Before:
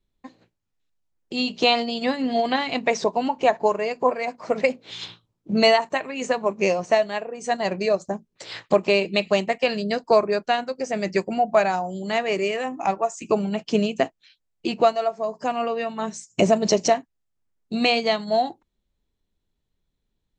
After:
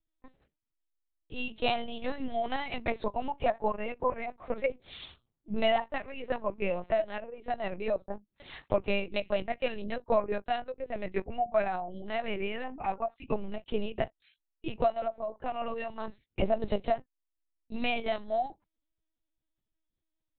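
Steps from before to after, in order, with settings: LPC vocoder at 8 kHz pitch kept; gain -9 dB

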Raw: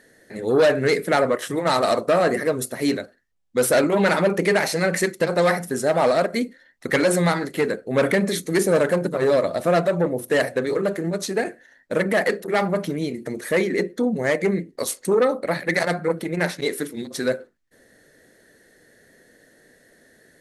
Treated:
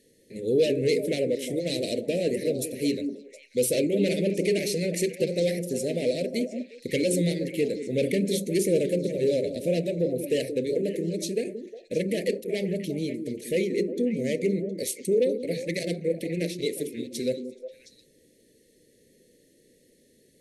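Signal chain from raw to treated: Chebyshev band-stop 510–2400 Hz, order 3; on a send: delay with a stepping band-pass 0.179 s, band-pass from 280 Hz, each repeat 1.4 oct, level -4.5 dB; on the sum: gain -3.5 dB

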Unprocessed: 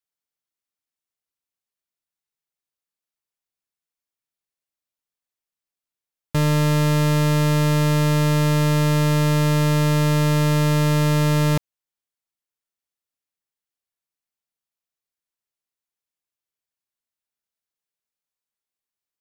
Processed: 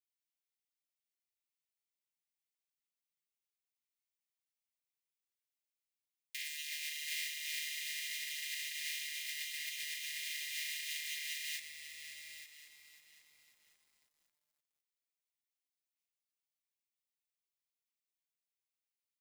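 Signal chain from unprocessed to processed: bell 15000 Hz -11 dB 3 oct; chorus voices 6, 1.3 Hz, delay 16 ms, depth 3 ms; echo 0.865 s -14.5 dB; limiter -19 dBFS, peak gain reduction 7 dB; steep high-pass 1900 Hz 96 dB/oct; tilt +1.5 dB/oct; lo-fi delay 0.541 s, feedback 55%, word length 11-bit, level -10.5 dB; gain +3 dB

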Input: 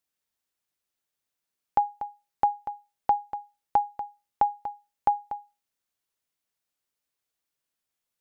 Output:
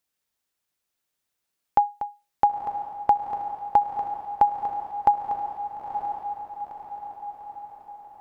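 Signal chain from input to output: diffused feedback echo 0.943 s, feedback 53%, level -7 dB; gain +3.5 dB

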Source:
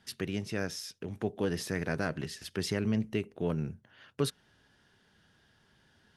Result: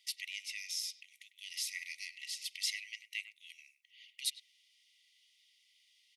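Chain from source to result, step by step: brick-wall FIR high-pass 1900 Hz; speakerphone echo 0.1 s, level -13 dB; gain +3 dB

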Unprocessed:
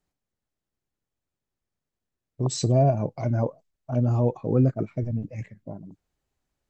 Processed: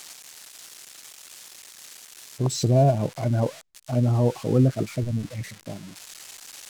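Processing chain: switching spikes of -25.5 dBFS; air absorption 50 m; gain +1.5 dB

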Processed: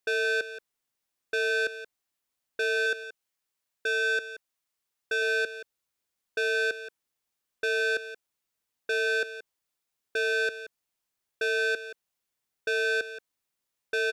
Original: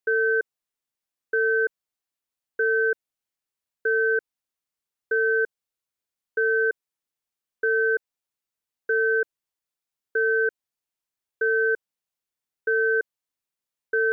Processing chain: 2.86–5.22 low shelf 420 Hz -5 dB; soft clip -29.5 dBFS, distortion -8 dB; echo 0.176 s -13 dB; gain +4.5 dB

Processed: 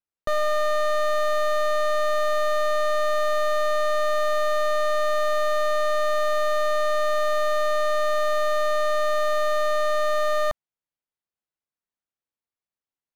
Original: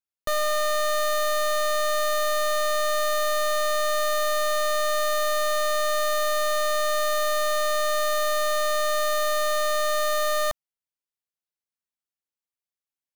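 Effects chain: LPF 1600 Hz 6 dB/oct; gain +3 dB

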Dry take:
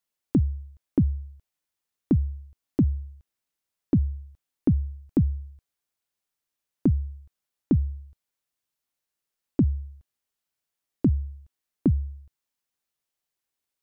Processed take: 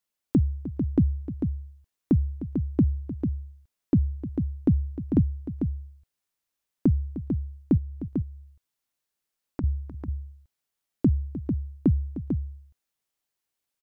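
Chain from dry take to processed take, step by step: 7.77–9.64 compressor, threshold -31 dBFS, peak gain reduction 13.5 dB; tapped delay 0.305/0.446 s -13.5/-6.5 dB

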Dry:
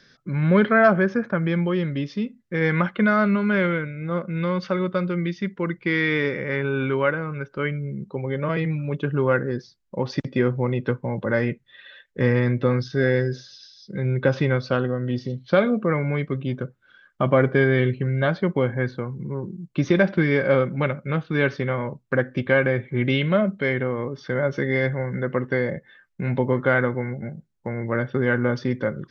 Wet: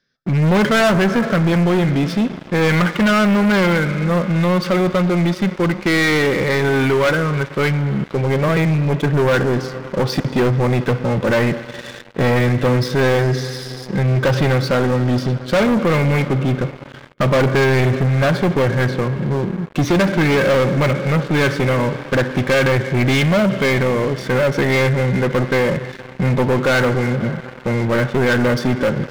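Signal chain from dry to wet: Schroeder reverb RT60 3.7 s, combs from 31 ms, DRR 15 dB; sample leveller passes 5; gain -6 dB

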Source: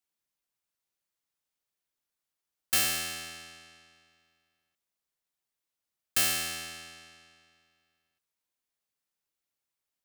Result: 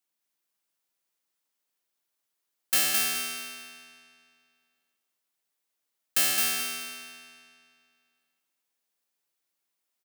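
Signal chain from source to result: in parallel at -5 dB: soft clip -27.5 dBFS, distortion -9 dB; on the sum: HPF 190 Hz 12 dB/oct; high shelf 12000 Hz +3 dB; feedback echo 0.214 s, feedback 31%, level -3 dB; gain -1.5 dB

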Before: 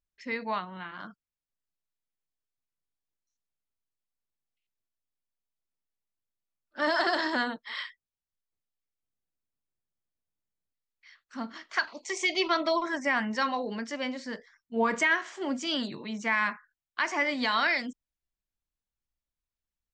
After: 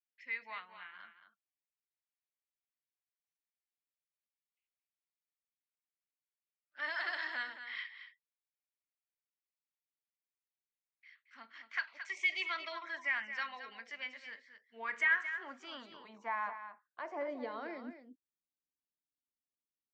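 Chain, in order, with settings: band-pass sweep 2200 Hz -> 280 Hz, 14.75–18.27; echo 0.223 s -10.5 dB; gain -3 dB

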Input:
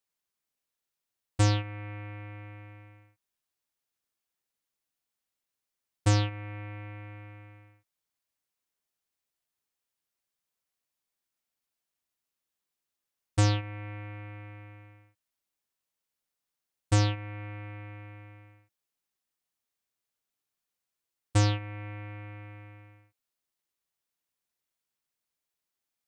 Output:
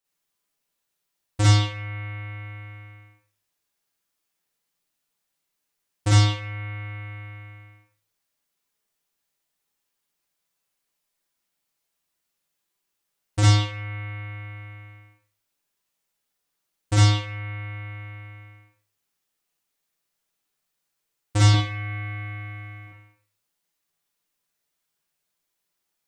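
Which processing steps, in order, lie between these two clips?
21.48–22.87 comb 7 ms, depth 83%; Schroeder reverb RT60 0.39 s, DRR -7 dB

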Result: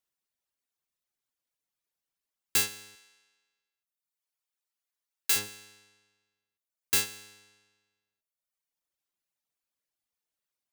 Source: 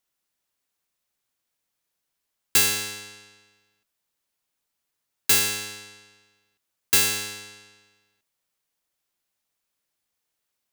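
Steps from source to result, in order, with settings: 2.95–5.36 HPF 850 Hz 6 dB/oct; reverb removal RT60 1.2 s; gain -6.5 dB

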